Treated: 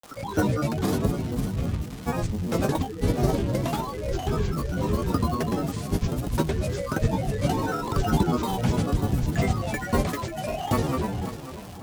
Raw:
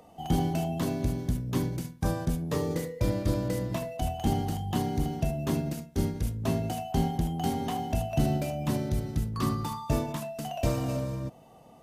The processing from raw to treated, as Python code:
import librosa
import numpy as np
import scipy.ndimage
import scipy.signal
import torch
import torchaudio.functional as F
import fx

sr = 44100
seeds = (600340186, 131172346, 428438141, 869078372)

y = fx.dmg_crackle(x, sr, seeds[0], per_s=460.0, level_db=-37.0)
y = fx.granulator(y, sr, seeds[1], grain_ms=100.0, per_s=20.0, spray_ms=100.0, spread_st=12)
y = fx.echo_feedback(y, sr, ms=541, feedback_pct=43, wet_db=-12.5)
y = F.gain(torch.from_numpy(y), 5.5).numpy()